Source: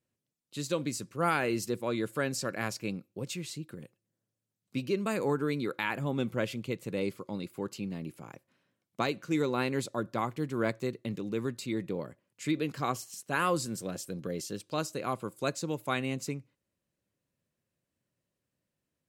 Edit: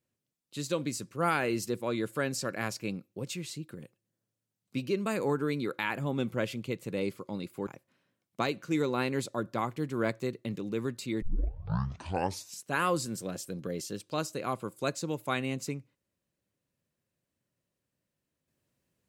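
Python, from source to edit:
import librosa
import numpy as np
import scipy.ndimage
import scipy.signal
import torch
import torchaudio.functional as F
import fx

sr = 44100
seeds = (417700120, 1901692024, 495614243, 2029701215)

y = fx.edit(x, sr, fx.cut(start_s=7.67, length_s=0.6),
    fx.tape_start(start_s=11.82, length_s=1.41), tone=tone)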